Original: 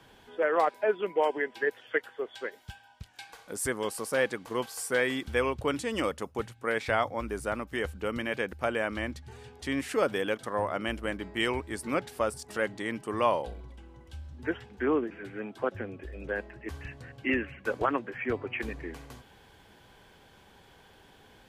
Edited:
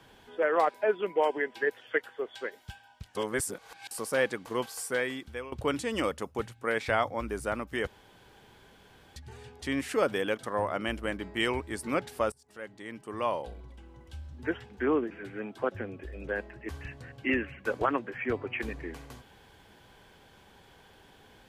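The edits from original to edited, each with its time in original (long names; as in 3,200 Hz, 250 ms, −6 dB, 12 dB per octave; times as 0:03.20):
0:03.15–0:03.91: reverse
0:04.70–0:05.52: fade out, to −17 dB
0:07.87–0:09.16: fill with room tone
0:12.32–0:14.01: fade in, from −23.5 dB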